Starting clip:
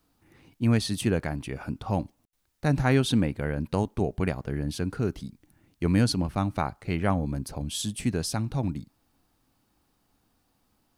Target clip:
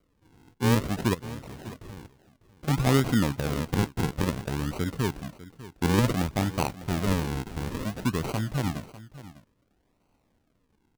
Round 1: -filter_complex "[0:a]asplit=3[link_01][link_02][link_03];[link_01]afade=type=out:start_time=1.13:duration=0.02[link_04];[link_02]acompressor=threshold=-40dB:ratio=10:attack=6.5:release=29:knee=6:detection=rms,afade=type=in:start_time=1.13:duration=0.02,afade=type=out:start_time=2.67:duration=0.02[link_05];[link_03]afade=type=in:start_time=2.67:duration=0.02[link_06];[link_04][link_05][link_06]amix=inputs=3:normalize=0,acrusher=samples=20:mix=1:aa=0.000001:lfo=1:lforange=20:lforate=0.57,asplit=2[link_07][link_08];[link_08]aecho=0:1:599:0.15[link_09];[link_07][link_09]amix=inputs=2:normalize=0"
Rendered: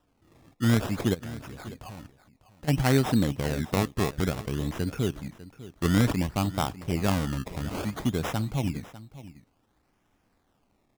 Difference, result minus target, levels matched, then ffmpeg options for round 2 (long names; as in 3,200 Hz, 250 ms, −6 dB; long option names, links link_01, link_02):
sample-and-hold swept by an LFO: distortion −7 dB
-filter_complex "[0:a]asplit=3[link_01][link_02][link_03];[link_01]afade=type=out:start_time=1.13:duration=0.02[link_04];[link_02]acompressor=threshold=-40dB:ratio=10:attack=6.5:release=29:knee=6:detection=rms,afade=type=in:start_time=1.13:duration=0.02,afade=type=out:start_time=2.67:duration=0.02[link_05];[link_03]afade=type=in:start_time=2.67:duration=0.02[link_06];[link_04][link_05][link_06]amix=inputs=3:normalize=0,acrusher=samples=50:mix=1:aa=0.000001:lfo=1:lforange=50:lforate=0.57,asplit=2[link_07][link_08];[link_08]aecho=0:1:599:0.15[link_09];[link_07][link_09]amix=inputs=2:normalize=0"